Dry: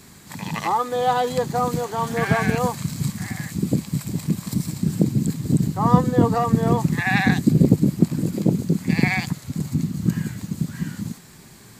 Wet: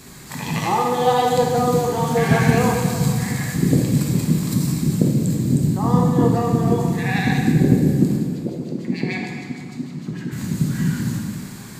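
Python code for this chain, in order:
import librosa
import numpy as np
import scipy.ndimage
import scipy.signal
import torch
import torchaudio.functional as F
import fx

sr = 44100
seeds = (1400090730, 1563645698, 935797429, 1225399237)

y = fx.dynamic_eq(x, sr, hz=1300.0, q=1.0, threshold_db=-37.0, ratio=4.0, max_db=-6)
y = fx.rider(y, sr, range_db=4, speed_s=2.0)
y = fx.filter_lfo_bandpass(y, sr, shape='sine', hz=6.6, low_hz=280.0, high_hz=4200.0, q=1.5, at=(8.16, 10.31), fade=0.02)
y = fx.rev_plate(y, sr, seeds[0], rt60_s=2.1, hf_ratio=0.75, predelay_ms=0, drr_db=-1.5)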